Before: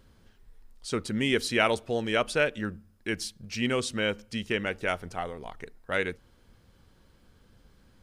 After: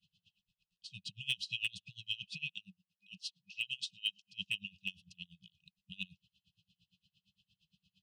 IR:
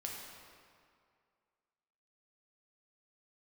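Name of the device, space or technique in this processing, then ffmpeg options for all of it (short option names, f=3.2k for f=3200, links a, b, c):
helicopter radio: -filter_complex "[0:a]asettb=1/sr,asplit=3[a][b][c];[a]atrim=end=2.524[d];[b]atrim=start=2.52:end=4.31,asetpts=PTS-STARTPTS,afade=t=in:d=0.004:c=qsin,afade=t=out:st=1.786:d=0.004:c=qsin,highpass=260[e];[c]atrim=start=4.306[f];[d][e]acrossfade=d=0.004:c1=hsin:c2=qsin[g];[g][f]acrossfade=d=0.004:c1=qsin:c2=hsin,afftfilt=real='re*(1-between(b*sr/4096,200,2500))':imag='im*(1-between(b*sr/4096,200,2500))':win_size=4096:overlap=0.75,highpass=360,lowpass=2.8k,highshelf=f=11k:g=-4,aeval=exprs='val(0)*pow(10,-28*(0.5-0.5*cos(2*PI*8.7*n/s))/20)':c=same,asoftclip=type=hard:threshold=-34dB,volume=9dB"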